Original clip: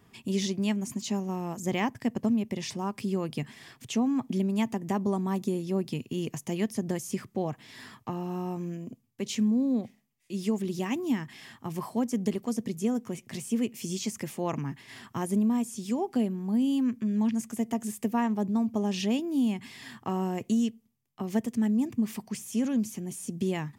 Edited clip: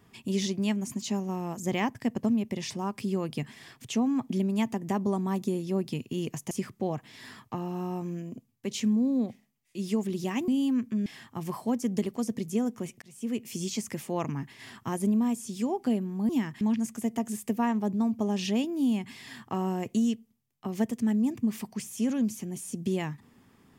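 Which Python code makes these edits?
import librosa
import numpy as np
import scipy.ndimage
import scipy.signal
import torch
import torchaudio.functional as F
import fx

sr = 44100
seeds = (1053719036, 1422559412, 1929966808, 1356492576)

y = fx.edit(x, sr, fx.cut(start_s=6.51, length_s=0.55),
    fx.swap(start_s=11.03, length_s=0.32, other_s=16.58, other_length_s=0.58),
    fx.fade_in_span(start_s=13.31, length_s=0.43), tone=tone)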